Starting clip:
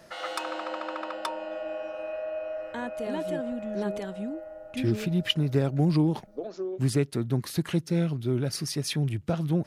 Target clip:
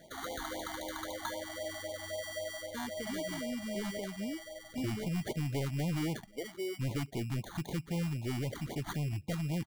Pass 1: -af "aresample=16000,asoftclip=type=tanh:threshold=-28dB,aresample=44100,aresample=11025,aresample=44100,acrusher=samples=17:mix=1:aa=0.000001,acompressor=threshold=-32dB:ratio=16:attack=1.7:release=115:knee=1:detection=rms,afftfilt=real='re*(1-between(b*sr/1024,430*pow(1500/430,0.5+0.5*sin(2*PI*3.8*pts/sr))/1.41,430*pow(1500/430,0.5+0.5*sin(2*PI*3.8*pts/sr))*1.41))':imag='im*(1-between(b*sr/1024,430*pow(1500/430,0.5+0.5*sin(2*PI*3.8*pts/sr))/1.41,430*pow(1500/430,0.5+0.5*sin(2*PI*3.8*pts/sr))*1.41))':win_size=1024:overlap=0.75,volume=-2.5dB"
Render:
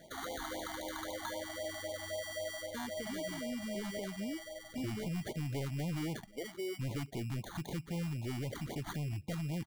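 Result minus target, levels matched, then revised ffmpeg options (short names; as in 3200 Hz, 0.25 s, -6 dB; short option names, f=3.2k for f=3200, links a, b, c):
compressor: peak gain reduction +5.5 dB
-af "aresample=16000,asoftclip=type=tanh:threshold=-28dB,aresample=44100,aresample=11025,aresample=44100,acrusher=samples=17:mix=1:aa=0.000001,afftfilt=real='re*(1-between(b*sr/1024,430*pow(1500/430,0.5+0.5*sin(2*PI*3.8*pts/sr))/1.41,430*pow(1500/430,0.5+0.5*sin(2*PI*3.8*pts/sr))*1.41))':imag='im*(1-between(b*sr/1024,430*pow(1500/430,0.5+0.5*sin(2*PI*3.8*pts/sr))/1.41,430*pow(1500/430,0.5+0.5*sin(2*PI*3.8*pts/sr))*1.41))':win_size=1024:overlap=0.75,volume=-2.5dB"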